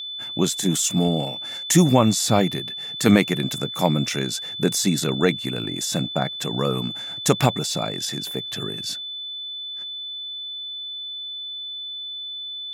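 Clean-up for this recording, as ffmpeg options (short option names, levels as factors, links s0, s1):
-af "bandreject=f=3500:w=30"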